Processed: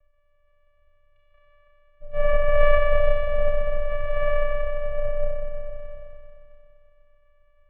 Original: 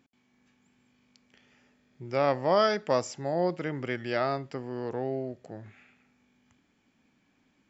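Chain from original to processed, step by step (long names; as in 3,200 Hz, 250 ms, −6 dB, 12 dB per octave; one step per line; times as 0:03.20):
four-comb reverb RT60 2.8 s, combs from 27 ms, DRR −4 dB
channel vocoder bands 4, square 286 Hz
single-sideband voice off tune −270 Hz 220–3,000 Hz
level +7 dB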